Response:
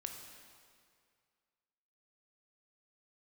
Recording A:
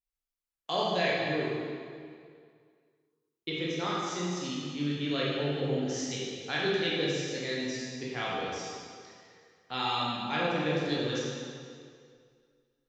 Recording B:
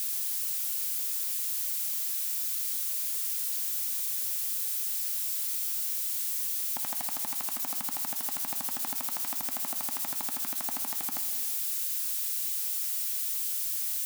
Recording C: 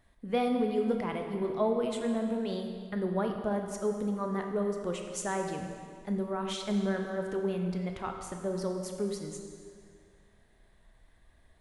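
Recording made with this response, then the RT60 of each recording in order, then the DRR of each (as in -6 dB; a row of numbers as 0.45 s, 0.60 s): C; 2.1 s, 2.1 s, 2.1 s; -6.5 dB, 9.0 dB, 3.0 dB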